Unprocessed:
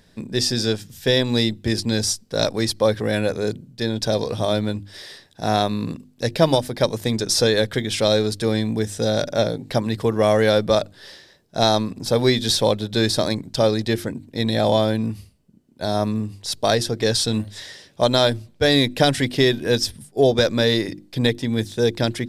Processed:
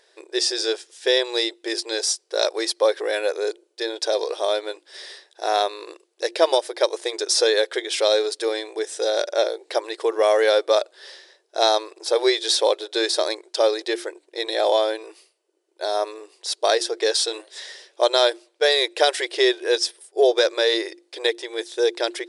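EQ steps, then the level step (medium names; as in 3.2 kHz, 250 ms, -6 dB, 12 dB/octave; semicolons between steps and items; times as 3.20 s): brick-wall FIR high-pass 330 Hz; brick-wall FIR low-pass 11 kHz; 0.0 dB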